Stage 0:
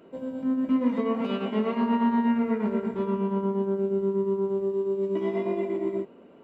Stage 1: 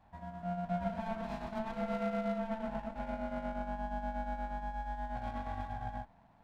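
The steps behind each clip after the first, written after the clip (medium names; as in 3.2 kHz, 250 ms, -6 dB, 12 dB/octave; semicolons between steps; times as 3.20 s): ring modulator 440 Hz; sliding maximum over 9 samples; trim -8.5 dB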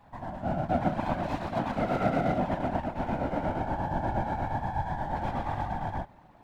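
whisper effect; trim +8 dB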